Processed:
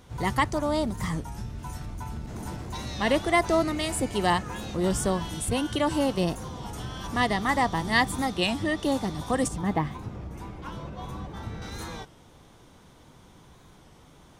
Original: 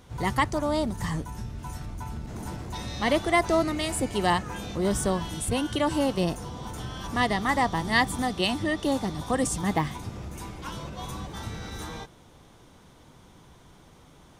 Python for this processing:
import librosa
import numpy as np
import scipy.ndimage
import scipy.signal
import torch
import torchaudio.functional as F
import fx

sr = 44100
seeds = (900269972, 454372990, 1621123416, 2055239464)

y = fx.peak_eq(x, sr, hz=9800.0, db=-12.5, octaves=2.8, at=(9.48, 11.62))
y = fx.record_warp(y, sr, rpm=33.33, depth_cents=100.0)